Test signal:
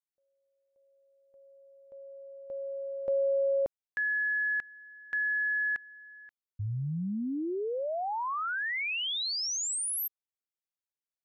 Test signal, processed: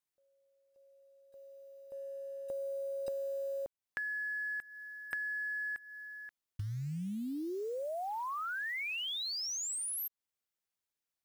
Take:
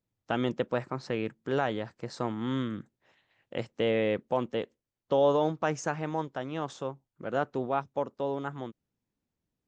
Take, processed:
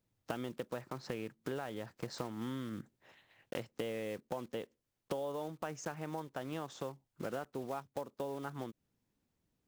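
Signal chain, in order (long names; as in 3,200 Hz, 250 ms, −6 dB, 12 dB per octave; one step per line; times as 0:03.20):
one scale factor per block 5 bits
downward compressor 10 to 1, threshold −40 dBFS
level +3.5 dB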